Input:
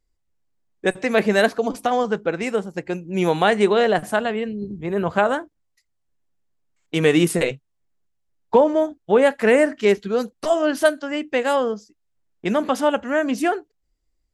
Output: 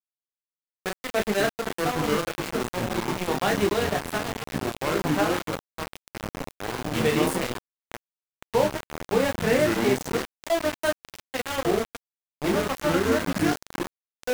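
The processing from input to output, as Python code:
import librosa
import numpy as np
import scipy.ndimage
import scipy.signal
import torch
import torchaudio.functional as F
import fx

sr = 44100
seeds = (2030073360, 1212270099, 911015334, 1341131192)

y = fx.room_early_taps(x, sr, ms=(15, 33), db=(-6.0, -4.5))
y = fx.echo_pitch(y, sr, ms=256, semitones=-5, count=3, db_per_echo=-3.0)
y = np.where(np.abs(y) >= 10.0 ** (-15.0 / 20.0), y, 0.0)
y = y * librosa.db_to_amplitude(-9.0)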